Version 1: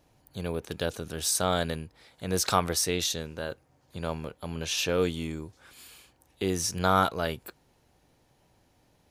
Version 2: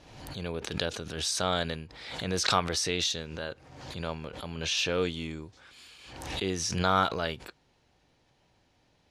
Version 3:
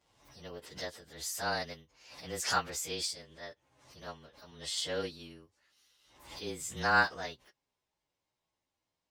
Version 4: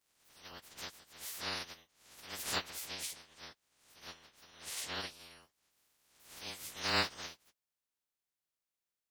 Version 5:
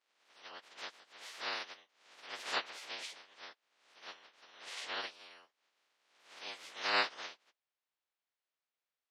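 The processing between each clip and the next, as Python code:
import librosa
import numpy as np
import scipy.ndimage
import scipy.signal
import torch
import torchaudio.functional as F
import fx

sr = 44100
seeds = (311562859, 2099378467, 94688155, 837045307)

y1 = scipy.signal.sosfilt(scipy.signal.butter(2, 4400.0, 'lowpass', fs=sr, output='sos'), x)
y1 = fx.high_shelf(y1, sr, hz=2200.0, db=9.0)
y1 = fx.pre_swell(y1, sr, db_per_s=53.0)
y1 = y1 * librosa.db_to_amplitude(-3.5)
y2 = fx.partial_stretch(y1, sr, pct=109)
y2 = fx.low_shelf(y2, sr, hz=340.0, db=-9.0)
y2 = fx.upward_expand(y2, sr, threshold_db=-54.0, expansion=1.5)
y2 = y2 * librosa.db_to_amplitude(2.0)
y3 = fx.spec_clip(y2, sr, under_db=29)
y3 = y3 * librosa.db_to_amplitude(-5.5)
y4 = fx.bandpass_edges(y3, sr, low_hz=440.0, high_hz=3800.0)
y4 = y4 * librosa.db_to_amplitude(2.5)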